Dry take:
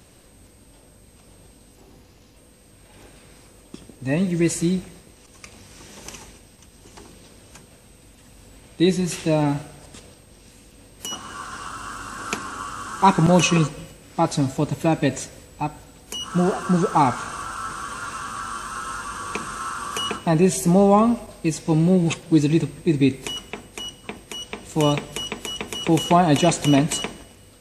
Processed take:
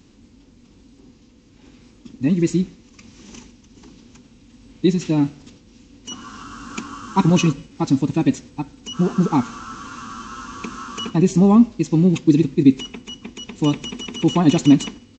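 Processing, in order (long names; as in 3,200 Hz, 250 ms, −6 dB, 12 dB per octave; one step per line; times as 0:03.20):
graphic EQ with 15 bands 250 Hz +11 dB, 630 Hz −10 dB, 1,600 Hz −4 dB
phase-vocoder stretch with locked phases 0.55×
downsampling to 16,000 Hz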